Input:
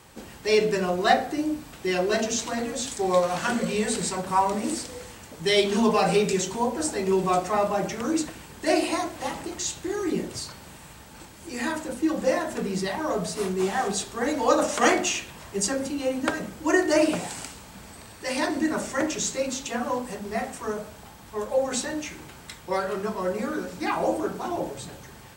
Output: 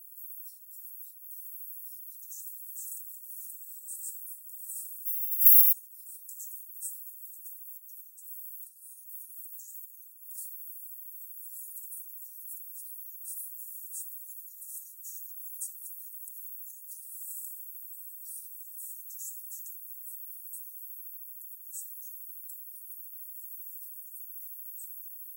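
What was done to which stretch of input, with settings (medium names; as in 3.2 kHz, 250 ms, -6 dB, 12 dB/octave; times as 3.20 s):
5.05–5.71 s: formants flattened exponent 0.1
7.77–10.38 s: compression 12:1, threshold -32 dBFS
14.08–14.54 s: echo throw 390 ms, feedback 65%, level -0.5 dB
whole clip: comb 4.4 ms, depth 51%; compression 6:1, threshold -23 dBFS; inverse Chebyshev high-pass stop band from 2.9 kHz, stop band 80 dB; trim +16 dB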